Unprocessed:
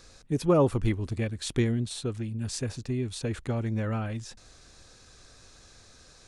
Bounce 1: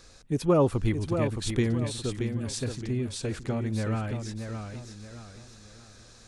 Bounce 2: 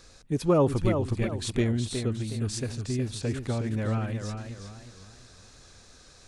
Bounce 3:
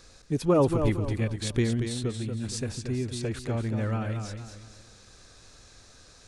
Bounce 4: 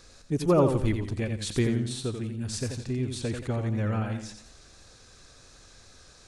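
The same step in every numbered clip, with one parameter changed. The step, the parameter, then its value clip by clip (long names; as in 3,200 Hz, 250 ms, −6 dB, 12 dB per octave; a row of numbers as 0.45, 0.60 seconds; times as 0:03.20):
feedback echo with a swinging delay time, delay time: 622, 365, 231, 87 milliseconds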